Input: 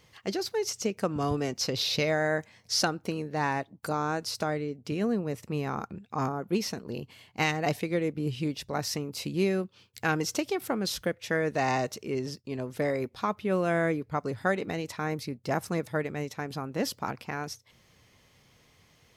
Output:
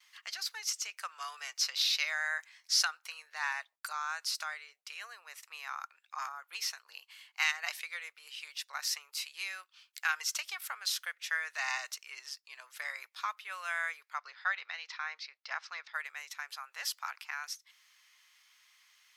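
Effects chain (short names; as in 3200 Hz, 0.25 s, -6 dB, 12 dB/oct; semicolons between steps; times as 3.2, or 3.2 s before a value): inverse Chebyshev high-pass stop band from 270 Hz, stop band 70 dB; gate with hold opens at -57 dBFS; 14.18–15.94 steep low-pass 5400 Hz 36 dB/oct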